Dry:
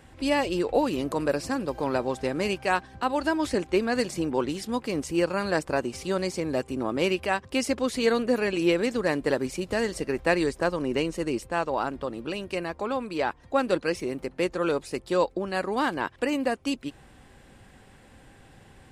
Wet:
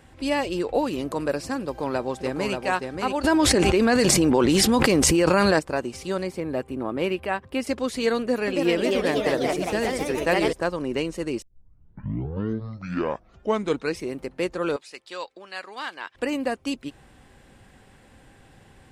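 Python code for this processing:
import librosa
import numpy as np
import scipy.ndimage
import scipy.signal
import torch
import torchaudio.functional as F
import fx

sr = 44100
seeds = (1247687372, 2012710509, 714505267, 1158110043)

y = fx.echo_throw(x, sr, start_s=1.62, length_s=0.92, ms=580, feedback_pct=15, wet_db=-5.0)
y = fx.env_flatten(y, sr, amount_pct=100, at=(3.23, 5.58), fade=0.02)
y = fx.peak_eq(y, sr, hz=6200.0, db=-12.0, octaves=1.3, at=(6.23, 7.67))
y = fx.echo_pitch(y, sr, ms=292, semitones=2, count=3, db_per_echo=-3.0, at=(8.18, 10.53))
y = fx.bandpass_q(y, sr, hz=3300.0, q=0.68, at=(14.76, 16.15))
y = fx.edit(y, sr, fx.tape_start(start_s=11.42, length_s=2.63), tone=tone)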